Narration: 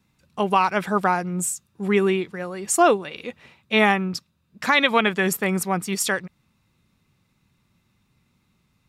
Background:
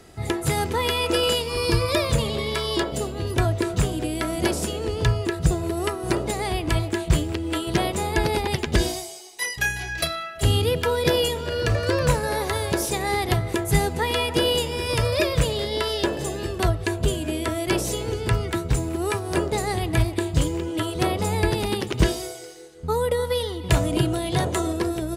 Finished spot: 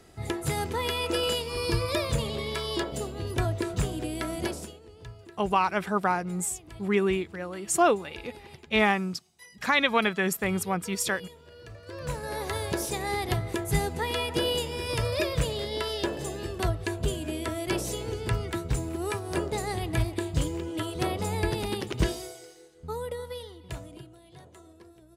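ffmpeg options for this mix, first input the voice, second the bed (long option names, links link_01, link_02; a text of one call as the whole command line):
ffmpeg -i stem1.wav -i stem2.wav -filter_complex "[0:a]adelay=5000,volume=-5dB[link_01];[1:a]volume=11.5dB,afade=type=out:start_time=4.33:duration=0.47:silence=0.133352,afade=type=in:start_time=11.85:duration=0.7:silence=0.133352,afade=type=out:start_time=21.92:duration=2.17:silence=0.0841395[link_02];[link_01][link_02]amix=inputs=2:normalize=0" out.wav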